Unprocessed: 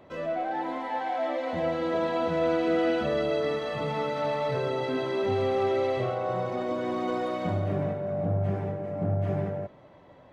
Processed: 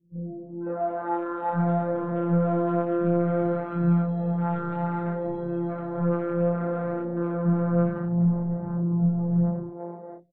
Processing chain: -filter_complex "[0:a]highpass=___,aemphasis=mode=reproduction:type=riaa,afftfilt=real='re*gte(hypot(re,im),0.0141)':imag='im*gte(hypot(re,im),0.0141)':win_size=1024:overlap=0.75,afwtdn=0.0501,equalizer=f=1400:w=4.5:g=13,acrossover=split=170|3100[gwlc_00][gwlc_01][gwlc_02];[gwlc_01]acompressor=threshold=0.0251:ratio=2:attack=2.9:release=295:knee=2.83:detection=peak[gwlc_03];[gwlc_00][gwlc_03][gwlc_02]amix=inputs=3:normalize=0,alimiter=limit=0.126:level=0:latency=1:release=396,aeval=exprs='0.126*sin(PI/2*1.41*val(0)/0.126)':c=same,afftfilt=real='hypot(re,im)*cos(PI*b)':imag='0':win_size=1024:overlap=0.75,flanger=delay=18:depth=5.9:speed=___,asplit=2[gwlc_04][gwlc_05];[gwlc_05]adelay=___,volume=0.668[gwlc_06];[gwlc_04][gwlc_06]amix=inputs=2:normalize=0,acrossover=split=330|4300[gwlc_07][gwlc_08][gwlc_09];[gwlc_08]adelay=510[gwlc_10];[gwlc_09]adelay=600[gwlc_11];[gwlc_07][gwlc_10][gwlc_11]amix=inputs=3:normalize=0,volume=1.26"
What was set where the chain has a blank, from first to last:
120, 0.6, 35